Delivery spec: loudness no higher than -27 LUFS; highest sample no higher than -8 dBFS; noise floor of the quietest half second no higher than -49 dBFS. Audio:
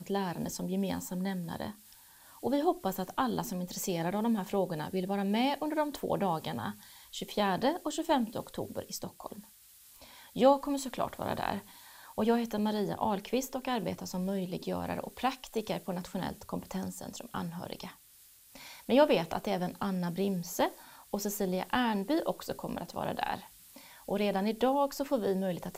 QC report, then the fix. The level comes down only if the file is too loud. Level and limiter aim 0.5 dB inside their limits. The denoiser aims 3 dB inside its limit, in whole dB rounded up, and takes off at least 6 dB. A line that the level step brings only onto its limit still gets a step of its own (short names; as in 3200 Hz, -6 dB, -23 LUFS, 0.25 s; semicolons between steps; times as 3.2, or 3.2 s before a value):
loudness -33.0 LUFS: OK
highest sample -12.5 dBFS: OK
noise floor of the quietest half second -59 dBFS: OK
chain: none